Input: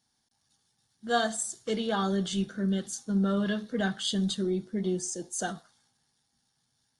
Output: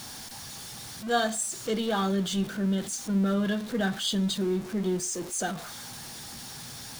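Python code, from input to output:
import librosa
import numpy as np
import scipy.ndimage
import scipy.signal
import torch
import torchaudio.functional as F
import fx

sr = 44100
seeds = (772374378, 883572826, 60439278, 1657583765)

y = x + 0.5 * 10.0 ** (-35.5 / 20.0) * np.sign(x)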